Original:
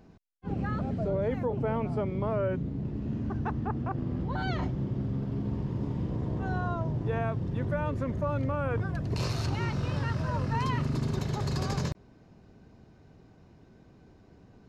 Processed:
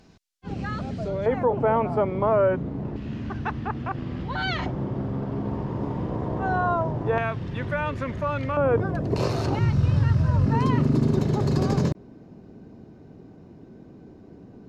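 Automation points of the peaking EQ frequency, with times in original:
peaking EQ +12.5 dB 2.7 oct
5.3 kHz
from 1.26 s 890 Hz
from 2.96 s 2.8 kHz
from 4.66 s 860 Hz
from 7.18 s 2.5 kHz
from 8.57 s 480 Hz
from 9.59 s 82 Hz
from 10.46 s 290 Hz

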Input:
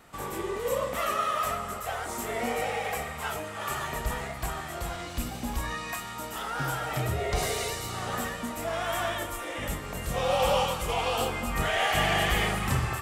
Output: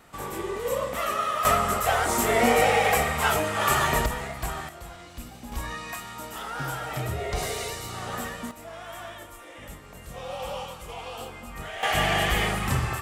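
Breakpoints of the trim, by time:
+1 dB
from 1.45 s +10 dB
from 4.06 s +1.5 dB
from 4.69 s -7.5 dB
from 5.52 s -1 dB
from 8.51 s -9.5 dB
from 11.83 s +1.5 dB

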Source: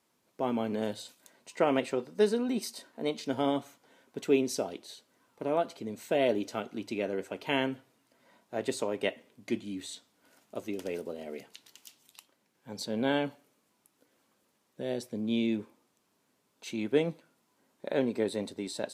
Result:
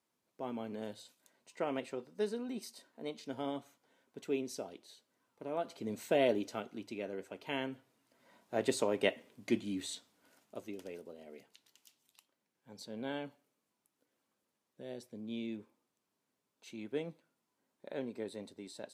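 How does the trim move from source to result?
5.51 s -10 dB
5.93 s 0 dB
6.96 s -8.5 dB
7.66 s -8.5 dB
8.55 s 0 dB
9.93 s 0 dB
10.99 s -11.5 dB

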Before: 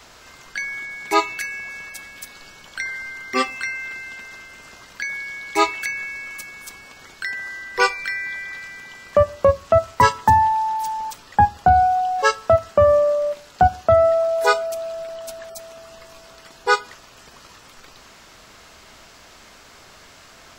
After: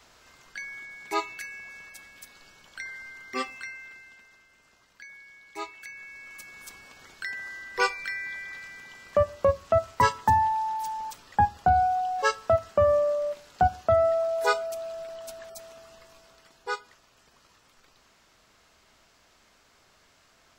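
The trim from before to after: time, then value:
3.50 s -10.5 dB
4.40 s -19 dB
5.69 s -19 dB
6.63 s -7 dB
15.67 s -7 dB
16.80 s -15 dB

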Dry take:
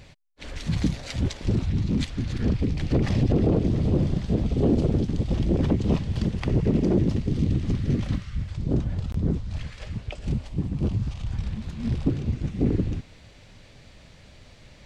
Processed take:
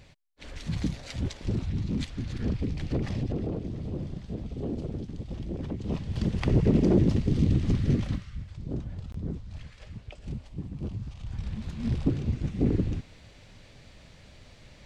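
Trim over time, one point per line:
2.81 s -5.5 dB
3.63 s -12 dB
5.72 s -12 dB
6.39 s 0 dB
7.89 s 0 dB
8.45 s -9.5 dB
11.11 s -9.5 dB
11.64 s -2 dB

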